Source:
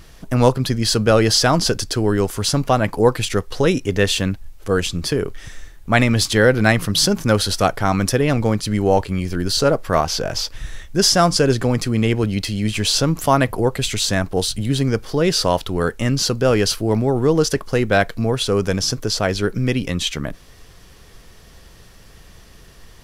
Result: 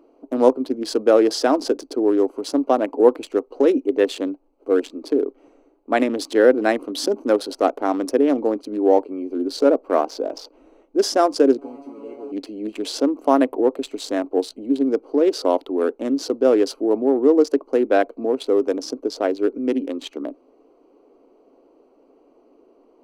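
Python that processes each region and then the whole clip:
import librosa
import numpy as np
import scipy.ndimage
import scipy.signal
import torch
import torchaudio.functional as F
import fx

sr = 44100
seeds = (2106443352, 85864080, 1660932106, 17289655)

y = fx.chain(x, sr, fx.delta_mod(bps=64000, step_db=-17.5),
    fx.comb_fb(f0_hz=140.0, decay_s=0.24, harmonics='all', damping=0.0, mix_pct=100), at=(11.58, 12.32))
y = fx.wiener(y, sr, points=25)
y = scipy.signal.sosfilt(scipy.signal.ellip(4, 1.0, 40, 270.0, 'highpass', fs=sr, output='sos'), y)
y = fx.tilt_shelf(y, sr, db=8.0, hz=830.0)
y = y * 10.0 ** (-1.5 / 20.0)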